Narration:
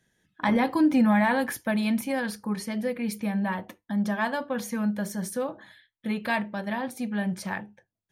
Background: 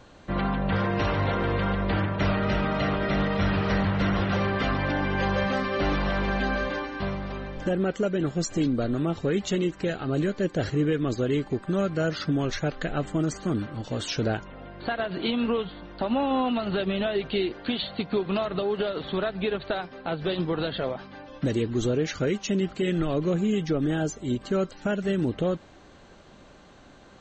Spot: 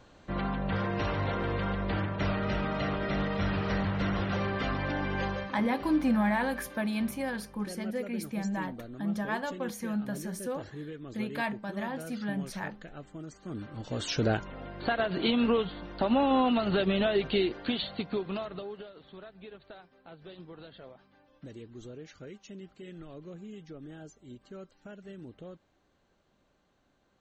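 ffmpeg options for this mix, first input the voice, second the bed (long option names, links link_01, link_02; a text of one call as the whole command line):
ffmpeg -i stem1.wav -i stem2.wav -filter_complex "[0:a]adelay=5100,volume=-5.5dB[link_01];[1:a]volume=11.5dB,afade=type=out:start_time=5.21:duration=0.32:silence=0.266073,afade=type=in:start_time=13.4:duration=0.96:silence=0.141254,afade=type=out:start_time=17.24:duration=1.65:silence=0.1[link_02];[link_01][link_02]amix=inputs=2:normalize=0" out.wav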